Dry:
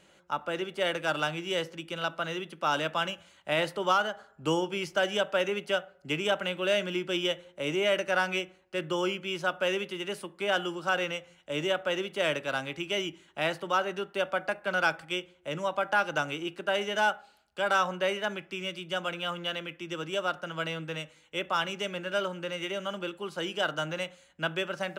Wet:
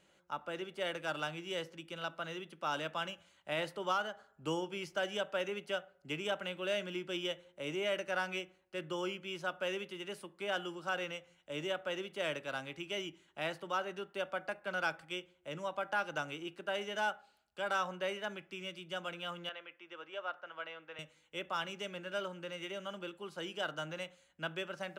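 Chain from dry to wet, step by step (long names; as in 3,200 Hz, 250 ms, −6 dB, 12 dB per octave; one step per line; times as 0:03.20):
0:19.49–0:20.99: band-pass filter 580–2,500 Hz
level −8.5 dB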